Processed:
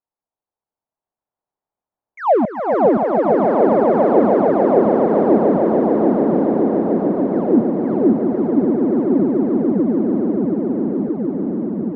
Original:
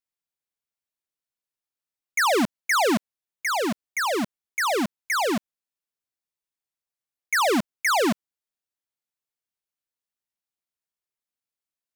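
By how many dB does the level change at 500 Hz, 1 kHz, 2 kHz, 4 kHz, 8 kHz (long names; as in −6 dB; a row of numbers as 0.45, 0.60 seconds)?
+15.0 dB, +7.0 dB, −9.0 dB, below −20 dB, below −35 dB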